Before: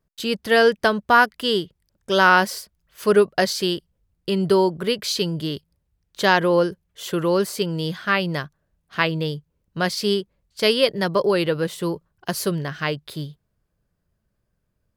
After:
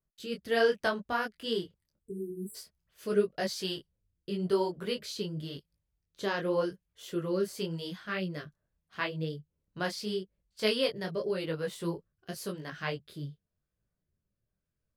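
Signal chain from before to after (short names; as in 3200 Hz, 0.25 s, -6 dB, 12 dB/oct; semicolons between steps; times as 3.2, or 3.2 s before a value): rotary speaker horn 1 Hz; spectral delete 2–2.55, 470–7600 Hz; detuned doubles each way 30 cents; gain -6 dB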